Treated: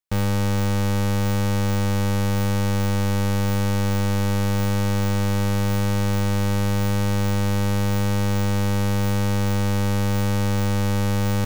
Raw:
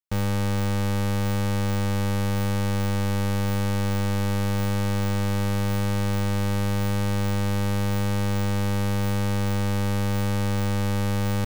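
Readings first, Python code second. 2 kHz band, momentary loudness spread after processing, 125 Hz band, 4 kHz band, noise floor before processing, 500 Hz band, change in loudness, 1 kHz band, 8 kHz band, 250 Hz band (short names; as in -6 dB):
+2.5 dB, 0 LU, +3.0 dB, +3.0 dB, -23 dBFS, +3.0 dB, +3.0 dB, +2.5 dB, +4.0 dB, +3.0 dB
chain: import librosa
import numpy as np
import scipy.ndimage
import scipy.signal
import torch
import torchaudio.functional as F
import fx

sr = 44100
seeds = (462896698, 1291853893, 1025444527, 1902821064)

y = fx.echo_wet_highpass(x, sr, ms=65, feedback_pct=64, hz=1700.0, wet_db=-13.5)
y = y * librosa.db_to_amplitude(3.0)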